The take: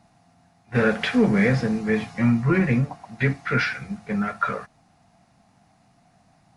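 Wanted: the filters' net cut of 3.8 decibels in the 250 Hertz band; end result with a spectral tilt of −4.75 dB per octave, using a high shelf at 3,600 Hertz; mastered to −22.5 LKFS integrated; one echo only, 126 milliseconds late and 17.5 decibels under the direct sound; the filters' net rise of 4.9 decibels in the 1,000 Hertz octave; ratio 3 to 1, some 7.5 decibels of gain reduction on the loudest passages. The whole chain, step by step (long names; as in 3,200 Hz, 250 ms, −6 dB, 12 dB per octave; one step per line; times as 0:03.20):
parametric band 250 Hz −5 dB
parametric band 1,000 Hz +7.5 dB
high-shelf EQ 3,600 Hz +3.5 dB
downward compressor 3 to 1, threshold −25 dBFS
single-tap delay 126 ms −17.5 dB
level +6 dB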